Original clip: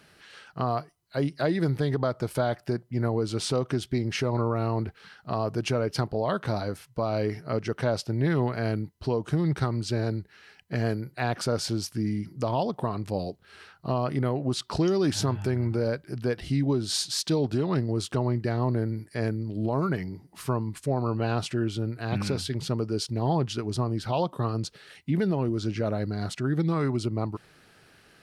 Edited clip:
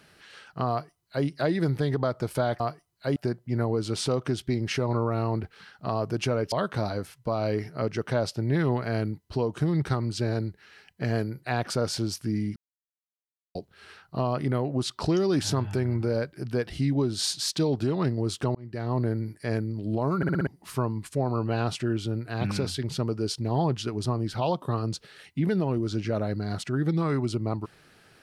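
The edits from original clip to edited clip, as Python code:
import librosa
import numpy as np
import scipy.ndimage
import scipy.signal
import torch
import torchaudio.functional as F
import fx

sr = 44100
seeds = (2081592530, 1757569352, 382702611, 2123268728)

y = fx.edit(x, sr, fx.duplicate(start_s=0.7, length_s=0.56, to_s=2.6),
    fx.cut(start_s=5.96, length_s=0.27),
    fx.silence(start_s=12.27, length_s=0.99),
    fx.fade_in_span(start_s=18.26, length_s=0.44),
    fx.stutter_over(start_s=19.88, slice_s=0.06, count=5), tone=tone)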